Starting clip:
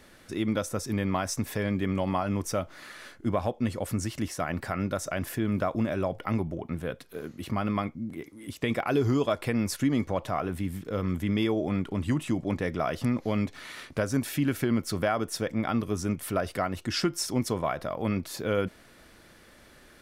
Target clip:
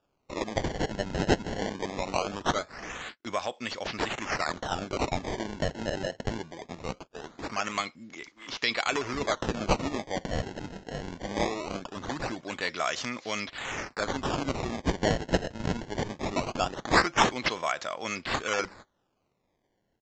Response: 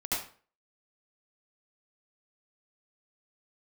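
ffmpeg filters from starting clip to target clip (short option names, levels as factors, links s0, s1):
-af "agate=range=0.0501:threshold=0.00501:ratio=16:detection=peak,highpass=f=980:p=1,equalizer=f=4600:w=0.42:g=11.5,acrusher=samples=21:mix=1:aa=0.000001:lfo=1:lforange=33.6:lforate=0.21,aresample=16000,aresample=44100,volume=1.12"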